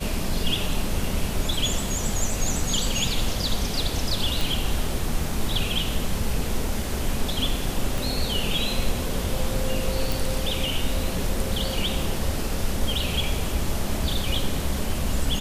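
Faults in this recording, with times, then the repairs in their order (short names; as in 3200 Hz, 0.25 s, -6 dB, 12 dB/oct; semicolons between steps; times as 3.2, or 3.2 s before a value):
4.41 pop
7.98 pop
10.12 pop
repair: de-click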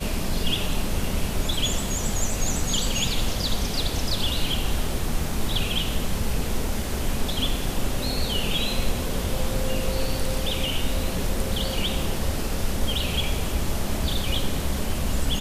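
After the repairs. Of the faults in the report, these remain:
7.98 pop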